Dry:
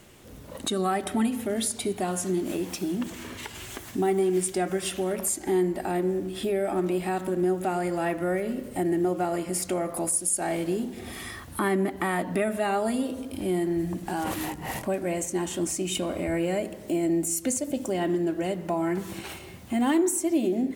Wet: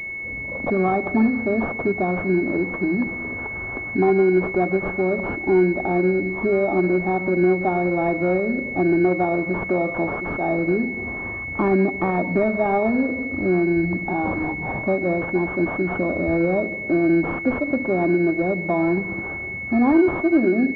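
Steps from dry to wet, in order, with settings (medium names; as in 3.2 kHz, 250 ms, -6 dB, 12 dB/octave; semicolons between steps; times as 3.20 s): class-D stage that switches slowly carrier 2.2 kHz; trim +7 dB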